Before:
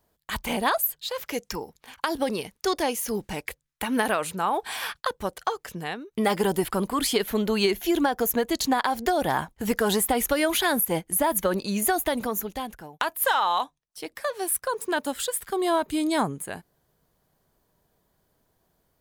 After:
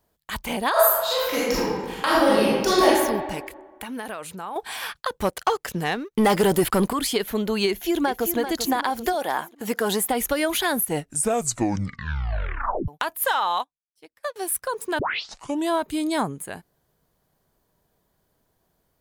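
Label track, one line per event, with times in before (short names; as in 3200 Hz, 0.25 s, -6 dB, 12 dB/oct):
0.710000	2.860000	reverb throw, RT60 1.5 s, DRR -9 dB
3.470000	4.560000	compressor 2:1, threshold -36 dBFS
5.180000	6.930000	sample leveller passes 2
7.680000	8.370000	echo throw 0.39 s, feedback 45%, level -9 dB
9.120000	10.100000	HPF 460 Hz -> 130 Hz
10.790000	10.790000	tape stop 2.09 s
13.590000	14.360000	upward expander 2.5:1, over -42 dBFS
14.990000	14.990000	tape start 0.71 s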